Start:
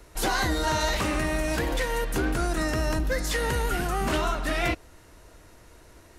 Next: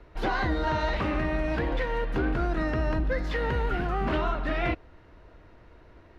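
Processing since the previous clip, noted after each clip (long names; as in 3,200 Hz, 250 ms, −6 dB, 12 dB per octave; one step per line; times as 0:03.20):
high-frequency loss of the air 330 metres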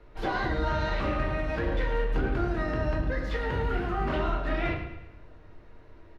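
repeating echo 108 ms, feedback 46%, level −11 dB
convolution reverb RT60 0.55 s, pre-delay 6 ms, DRR 2 dB
level −4 dB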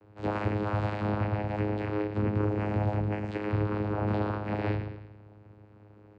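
channel vocoder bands 8, saw 104 Hz
level +2.5 dB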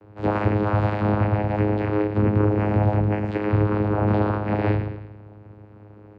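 high-shelf EQ 3,500 Hz −10 dB
level +8.5 dB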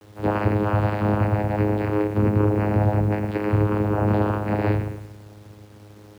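phase distortion by the signal itself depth 0.054 ms
bit reduction 9 bits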